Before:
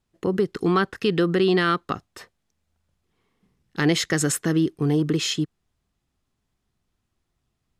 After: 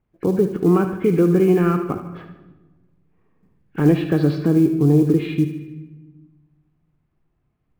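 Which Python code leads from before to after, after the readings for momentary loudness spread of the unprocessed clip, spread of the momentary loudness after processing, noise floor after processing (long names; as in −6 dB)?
8 LU, 13 LU, −69 dBFS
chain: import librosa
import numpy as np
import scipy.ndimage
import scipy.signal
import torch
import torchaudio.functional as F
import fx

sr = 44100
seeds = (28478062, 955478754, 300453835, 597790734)

p1 = fx.freq_compress(x, sr, knee_hz=1400.0, ratio=1.5)
p2 = fx.curve_eq(p1, sr, hz=(440.0, 2200.0, 5900.0), db=(0, -6, -27))
p3 = fx.quant_float(p2, sr, bits=4)
p4 = fx.room_shoebox(p3, sr, seeds[0], volume_m3=720.0, walls='mixed', distance_m=0.5)
p5 = fx.dynamic_eq(p4, sr, hz=1800.0, q=0.84, threshold_db=-42.0, ratio=4.0, max_db=-7)
p6 = p5 + fx.echo_thinned(p5, sr, ms=75, feedback_pct=48, hz=420.0, wet_db=-9.5, dry=0)
y = F.gain(torch.from_numpy(p6), 5.0).numpy()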